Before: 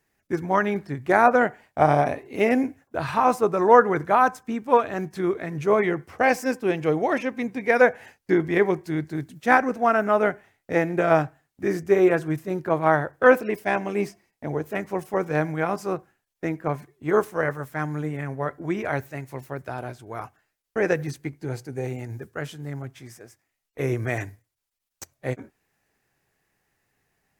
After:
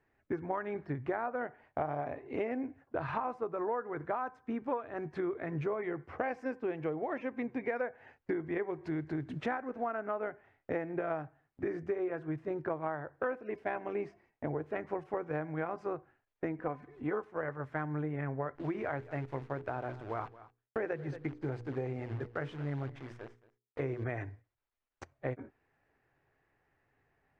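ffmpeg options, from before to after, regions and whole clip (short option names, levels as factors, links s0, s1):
-filter_complex "[0:a]asettb=1/sr,asplit=3[s0][s1][s2];[s0]atrim=end=8.734[s3];[s1]atrim=start=8.73:end=10,asetpts=PTS-STARTPTS,afade=t=in:d=0.004:c=qsin,afade=t=out:st=1.266:d=0.004:c=qsin,acompressor=mode=upward:threshold=0.0562:ratio=2.5:attack=3.2:release=140:knee=2.83:detection=peak,acrusher=bits=8:mode=log:mix=0:aa=0.000001[s4];[s2]atrim=start=9.996[s5];[s3][s4]acrossfade=d=0.004:c1=hsin:c2=qsin[s6];[s6][s5]acrossfade=d=0.004:c1=qsin:c2=hsin,asettb=1/sr,asplit=3[s7][s8][s9];[s7]atrim=end=16.594[s10];[s8]atrim=start=16.59:end=17.28,asetpts=PTS-STARTPTS,afade=t=in:d=0.004:c=qsin,afade=t=out:st=0.686:d=0.004:c=qsin,aecho=1:1:4:0.46,atrim=end_sample=30429,acompressor=mode=upward:threshold=0.0158:ratio=2.5:attack=3.2:release=140:knee=2.83:detection=peak[s11];[s9]atrim=start=17.276[s12];[s10][s11]acrossfade=d=0.004:c1=hsin:c2=qsin[s13];[s13][s12]acrossfade=d=0.004:c1=qsin:c2=hsin,asettb=1/sr,asplit=3[s14][s15][s16];[s14]atrim=end=18.554[s17];[s15]atrim=start=18.55:end=24.04,asetpts=PTS-STARTPTS,afade=t=in:d=0.004:c=qsin,afade=t=out:st=5.486:d=0.004:c=qsin,acrusher=bits=8:dc=4:mix=0:aa=0.000001,bandreject=f=60:t=h:w=6,bandreject=f=120:t=h:w=6,bandreject=f=180:t=h:w=6,bandreject=f=240:t=h:w=6,bandreject=f=300:t=h:w=6,bandreject=f=360:t=h:w=6,bandreject=f=420:t=h:w=6,bandreject=f=480:t=h:w=6,aecho=1:1:224:0.0944,atrim=end_sample=242109[s18];[s16]atrim=start=24.036[s19];[s17][s18]acrossfade=d=0.004:c1=hsin:c2=qsin[s20];[s20][s19]acrossfade=d=0.004:c1=qsin:c2=hsin,lowpass=1900,equalizer=f=190:t=o:w=0.24:g=-12,acompressor=threshold=0.0251:ratio=10"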